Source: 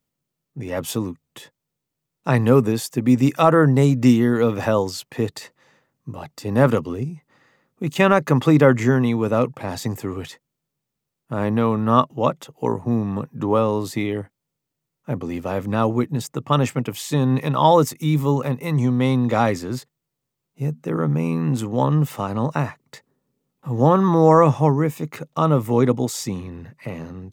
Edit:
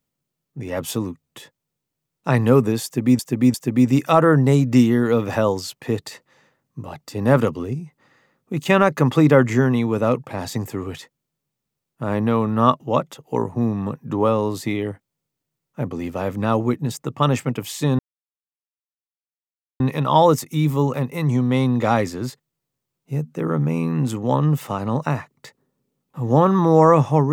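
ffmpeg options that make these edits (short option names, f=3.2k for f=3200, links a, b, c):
-filter_complex "[0:a]asplit=4[a][b][c][d];[a]atrim=end=3.192[e];[b]atrim=start=2.838:end=3.192[f];[c]atrim=start=2.838:end=17.29,asetpts=PTS-STARTPTS,afade=t=out:st=14.448:d=0.004:c=hsin,apad=pad_dur=1.81[g];[d]atrim=start=17.29,asetpts=PTS-STARTPTS,afade=t=in:d=0.004:c=hsin[h];[e][f]acrossfade=d=0.004:c1=hsin:c2=hsin[i];[g][h]concat=n=2:v=0:a=1[j];[i][j]acrossfade=d=0.004:c1=hsin:c2=hsin"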